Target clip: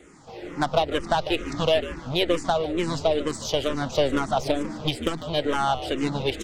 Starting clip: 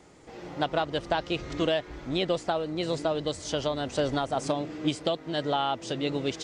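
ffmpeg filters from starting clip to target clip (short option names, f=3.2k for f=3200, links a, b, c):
-filter_complex "[0:a]aeval=exprs='0.266*(cos(1*acos(clip(val(0)/0.266,-1,1)))-cos(1*PI/2))+0.0211*(cos(8*acos(clip(val(0)/0.266,-1,1)))-cos(8*PI/2))':c=same,asplit=5[a][b][c][d][e];[b]adelay=148,afreqshift=-72,volume=-12.5dB[f];[c]adelay=296,afreqshift=-144,volume=-21.1dB[g];[d]adelay=444,afreqshift=-216,volume=-29.8dB[h];[e]adelay=592,afreqshift=-288,volume=-38.4dB[i];[a][f][g][h][i]amix=inputs=5:normalize=0,asplit=2[j][k];[k]afreqshift=-2.2[l];[j][l]amix=inputs=2:normalize=1,volume=6.5dB"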